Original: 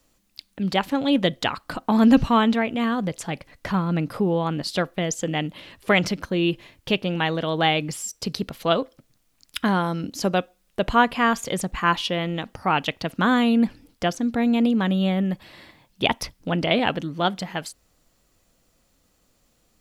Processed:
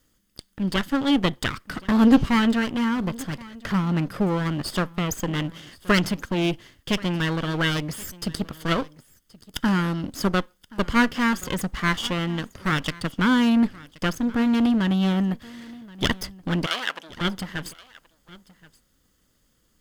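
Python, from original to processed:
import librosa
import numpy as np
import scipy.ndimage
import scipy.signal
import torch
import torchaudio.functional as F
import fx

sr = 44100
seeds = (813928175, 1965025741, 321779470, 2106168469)

p1 = fx.lower_of_two(x, sr, delay_ms=0.61)
p2 = fx.highpass(p1, sr, hz=840.0, slope=12, at=(16.66, 17.21))
y = p2 + fx.echo_single(p2, sr, ms=1076, db=-21.5, dry=0)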